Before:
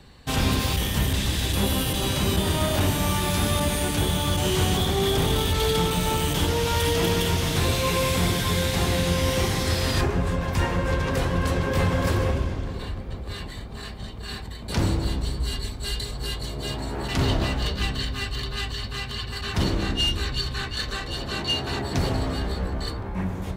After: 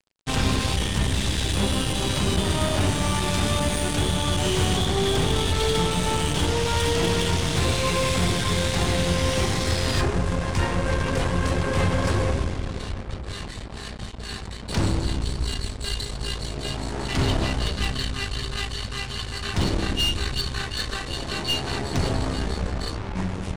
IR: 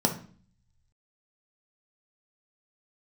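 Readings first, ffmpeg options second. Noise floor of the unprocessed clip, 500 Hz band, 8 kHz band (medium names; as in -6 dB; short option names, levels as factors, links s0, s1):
-35 dBFS, 0.0 dB, +1.0 dB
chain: -af "acrusher=bits=5:mix=0:aa=0.5,aresample=22050,aresample=44100,aeval=exprs='0.266*(cos(1*acos(clip(val(0)/0.266,-1,1)))-cos(1*PI/2))+0.0211*(cos(8*acos(clip(val(0)/0.266,-1,1)))-cos(8*PI/2))':c=same"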